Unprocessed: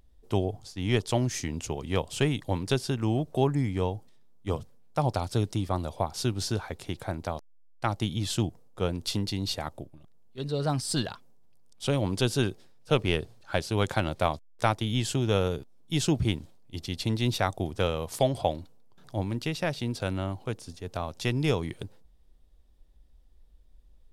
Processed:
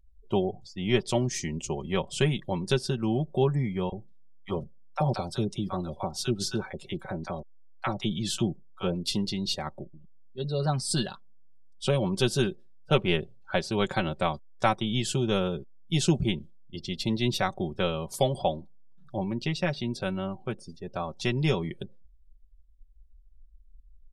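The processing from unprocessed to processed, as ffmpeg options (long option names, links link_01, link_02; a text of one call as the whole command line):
ffmpeg -i in.wav -filter_complex "[0:a]asettb=1/sr,asplit=3[link_01][link_02][link_03];[link_01]atrim=end=3.894[link_04];[link_02]atrim=start=3.89:end=9.12,asetpts=PTS-STARTPTS,afade=type=in:duration=0.004:curve=qsin,afade=type=out:start_time=5.226:duration=0.004:curve=qsin,acrossover=split=760[link_05][link_06];[link_05]adelay=30[link_07];[link_07][link_06]amix=inputs=2:normalize=0,atrim=end_sample=230643[link_08];[link_03]atrim=start=9.116[link_09];[link_04][link_08]acrossfade=duration=0.004:curve1=hsin:curve2=qsin[link_10];[link_10][link_09]acrossfade=duration=0.004:curve1=qsin:curve2=hsin,afftdn=noise_reduction=23:noise_floor=-46,adynamicequalizer=threshold=0.00794:dfrequency=770:dqfactor=0.79:tfrequency=770:tqfactor=0.79:attack=5:release=100:ratio=0.375:range=2:mode=cutabove:tftype=bell,aecho=1:1:5.3:0.69" out.wav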